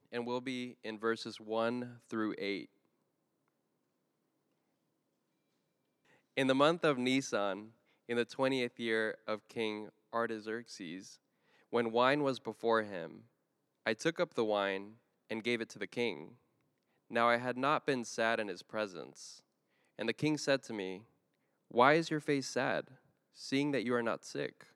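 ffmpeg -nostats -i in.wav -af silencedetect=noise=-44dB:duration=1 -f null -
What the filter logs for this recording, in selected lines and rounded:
silence_start: 2.65
silence_end: 6.37 | silence_duration: 3.72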